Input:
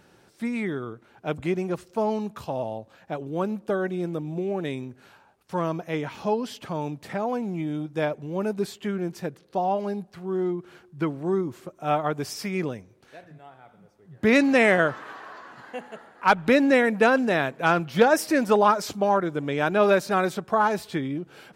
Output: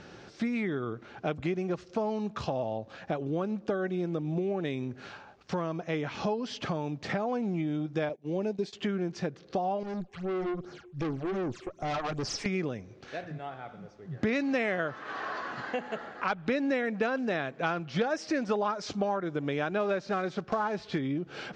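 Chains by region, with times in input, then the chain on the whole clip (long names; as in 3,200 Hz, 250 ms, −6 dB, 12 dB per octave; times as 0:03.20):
0:08.09–0:08.73: high-pass filter 180 Hz + parametric band 1,300 Hz −13 dB 0.65 octaves + noise gate −38 dBFS, range −20 dB
0:09.83–0:12.46: high-shelf EQ 5,800 Hz +8.5 dB + all-pass phaser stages 8, 2.6 Hz, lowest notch 170–3,200 Hz + tube saturation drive 34 dB, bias 0.7
0:19.80–0:21.00: one scale factor per block 5 bits + high-shelf EQ 5,900 Hz −10.5 dB
whole clip: Butterworth low-pass 6,400 Hz 36 dB per octave; downward compressor 4 to 1, threshold −38 dBFS; notch filter 940 Hz, Q 11; level +8 dB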